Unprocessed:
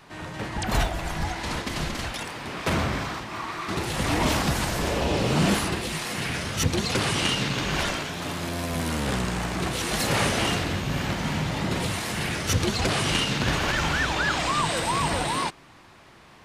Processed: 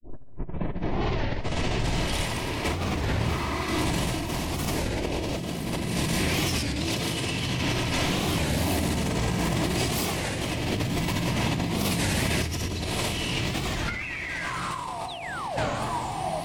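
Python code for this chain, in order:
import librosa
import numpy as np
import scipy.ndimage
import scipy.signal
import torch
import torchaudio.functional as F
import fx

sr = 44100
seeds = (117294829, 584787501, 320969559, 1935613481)

y = fx.tape_start_head(x, sr, length_s=2.43)
y = fx.spec_paint(y, sr, seeds[0], shape='fall', start_s=13.99, length_s=1.25, low_hz=580.0, high_hz=2700.0, level_db=-19.0)
y = y + 10.0 ** (-15.0 / 20.0) * np.pad(y, (int(1082 * sr / 1000.0), 0))[:len(y)]
y = fx.granulator(y, sr, seeds[1], grain_ms=252.0, per_s=16.0, spray_ms=100.0, spread_st=3)
y = fx.peak_eq(y, sr, hz=1400.0, db=-10.5, octaves=0.43)
y = fx.room_shoebox(y, sr, seeds[2], volume_m3=2800.0, walls='mixed', distance_m=2.9)
y = fx.spec_paint(y, sr, seeds[3], shape='fall', start_s=15.08, length_s=0.52, low_hz=500.0, high_hz=4200.0, level_db=-22.0)
y = fx.high_shelf(y, sr, hz=11000.0, db=10.5)
y = fx.hum_notches(y, sr, base_hz=50, count=3)
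y = fx.over_compress(y, sr, threshold_db=-28.0, ratio=-1.0)
y = fx.record_warp(y, sr, rpm=33.33, depth_cents=250.0)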